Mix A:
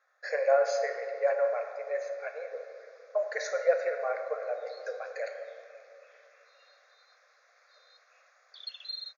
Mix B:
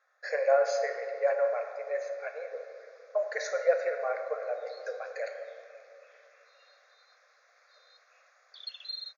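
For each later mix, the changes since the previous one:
none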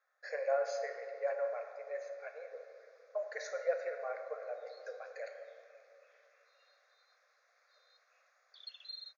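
speech -8.5 dB; background -8.0 dB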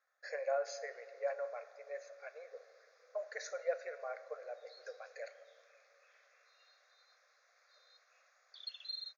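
speech: send -10.0 dB; master: add high shelf 3700 Hz +6 dB

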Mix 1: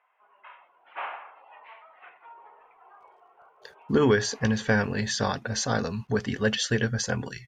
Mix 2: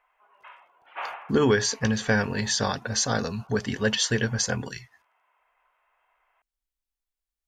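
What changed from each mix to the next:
speech: entry -2.60 s; master: add high shelf 4800 Hz +8 dB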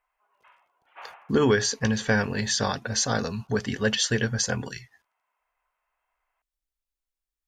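background -10.0 dB

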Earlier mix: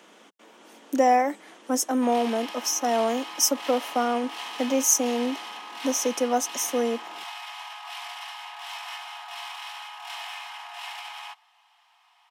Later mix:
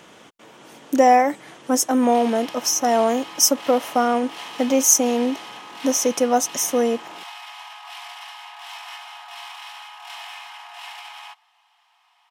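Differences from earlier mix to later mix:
speech +5.5 dB; master: remove steep high-pass 190 Hz 48 dB/oct

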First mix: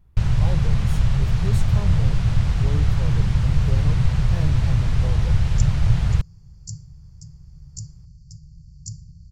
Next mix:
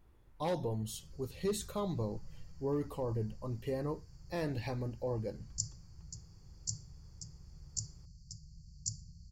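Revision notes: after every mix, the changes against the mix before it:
first sound: muted; master: add resonant low shelf 210 Hz -9 dB, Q 1.5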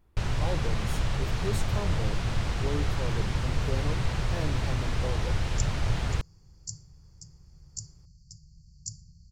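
first sound: unmuted

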